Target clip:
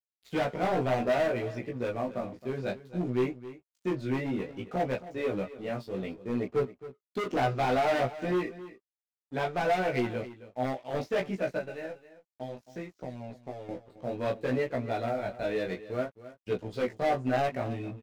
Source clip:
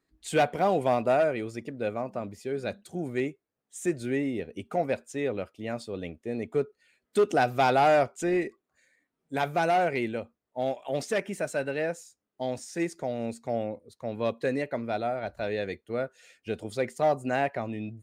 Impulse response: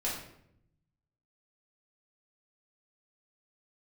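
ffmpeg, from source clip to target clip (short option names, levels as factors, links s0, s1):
-filter_complex "[0:a]deesser=0.95,lowpass=f=5600:w=0.5412,lowpass=f=5600:w=1.3066,lowshelf=f=470:g=4,asettb=1/sr,asplit=3[s0][s1][s2];[s0]atrim=end=11.574[s3];[s1]atrim=start=11.57:end=13.69,asetpts=PTS-STARTPTS,afade=t=in:d=0.004:c=qsin,afade=t=out:st=2.116:d=0.004:c=qsin,acompressor=threshold=0.0224:ratio=10[s4];[s2]atrim=start=13.686[s5];[s3][s4]acrossfade=d=0.004:c1=hsin:c2=qsin[s6];[s6][s5]acrossfade=d=0.004:c1=qsin:c2=hsin,aeval=exprs='sgn(val(0))*max(abs(val(0))-0.00316,0)':c=same,flanger=delay=15.5:depth=7.3:speed=0.61,asoftclip=type=hard:threshold=0.0501,asplit=2[s7][s8];[s8]adelay=16,volume=0.708[s9];[s7][s9]amix=inputs=2:normalize=0,aecho=1:1:268:0.168"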